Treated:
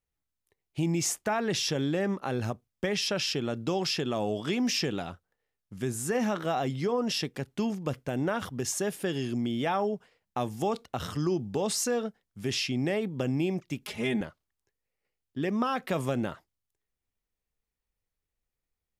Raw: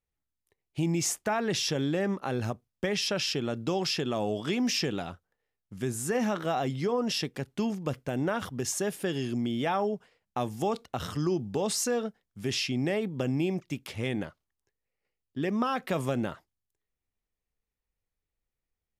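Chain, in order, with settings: 13.81–14.21 s: comb 4.8 ms, depth 89%

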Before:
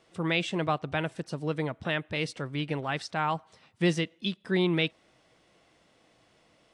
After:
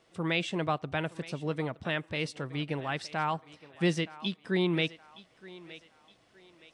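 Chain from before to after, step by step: thinning echo 918 ms, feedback 38%, high-pass 340 Hz, level -17 dB; trim -2 dB

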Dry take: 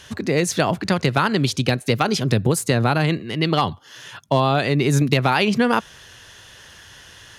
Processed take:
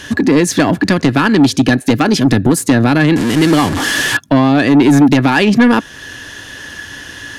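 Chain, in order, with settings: 3.16–4.17 s: one-bit delta coder 64 kbps, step -20.5 dBFS; in parallel at -0.5 dB: compression, threshold -31 dBFS, peak gain reduction 17 dB; on the sum: small resonant body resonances 280/1700 Hz, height 14 dB, ringing for 45 ms; saturation -8.5 dBFS, distortion -12 dB; trim +5 dB

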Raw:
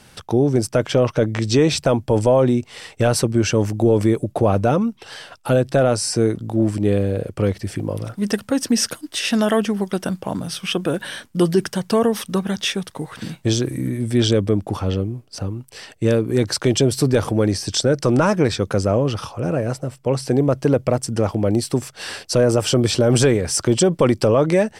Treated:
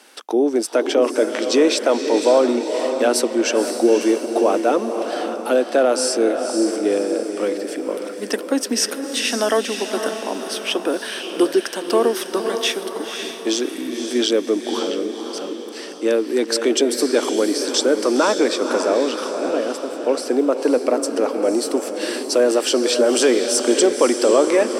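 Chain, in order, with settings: steep high-pass 260 Hz 48 dB/octave; on a send: echo that smears into a reverb 531 ms, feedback 45%, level -6.5 dB; on the sum: trim +1 dB

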